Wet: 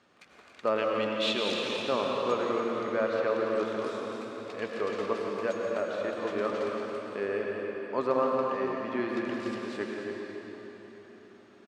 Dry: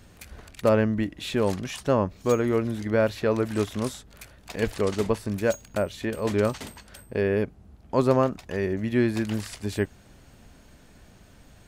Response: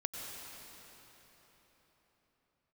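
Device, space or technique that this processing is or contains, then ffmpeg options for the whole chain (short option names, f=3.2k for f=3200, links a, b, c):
station announcement: -filter_complex "[0:a]asettb=1/sr,asplit=3[a][b][c];[a]atrim=end=0.784[d];[b]atrim=start=0.78:end=1.67,asetpts=PTS-STARTPTS,afade=t=in:d=0.004:c=qsin,afade=t=out:st=0.886:d=0.004:c=qsin,highshelf=f=2.1k:t=q:w=1.5:g=11[e];[c]atrim=start=1.666[f];[d][e]acrossfade=d=0.004:c1=hsin:c2=qsin[g];[g][f]acrossfade=d=0.004:c1=qsin:c2=hsin,highpass=310,lowpass=4.3k,equalizer=f=1.2k:t=o:w=0.25:g=7.5,aecho=1:1:172|279.9:0.282|0.355[h];[1:a]atrim=start_sample=2205[i];[h][i]afir=irnorm=-1:irlink=0,volume=-5.5dB"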